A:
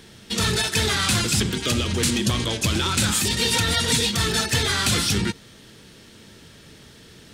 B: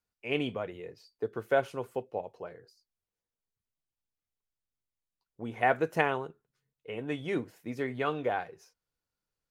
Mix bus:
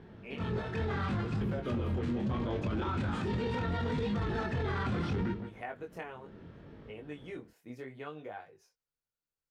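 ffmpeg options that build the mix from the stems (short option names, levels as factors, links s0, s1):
-filter_complex "[0:a]lowpass=1100,volume=1.12,asplit=2[s0][s1];[s1]volume=0.178[s2];[1:a]acompressor=threshold=0.0224:ratio=2.5,volume=0.531,asplit=2[s3][s4];[s4]apad=whole_len=323625[s5];[s0][s5]sidechaincompress=threshold=0.00447:ratio=8:attack=22:release=157[s6];[s2]aecho=0:1:168:1[s7];[s6][s3][s7]amix=inputs=3:normalize=0,flanger=delay=19:depth=5.5:speed=0.72,alimiter=level_in=1.26:limit=0.0631:level=0:latency=1:release=11,volume=0.794"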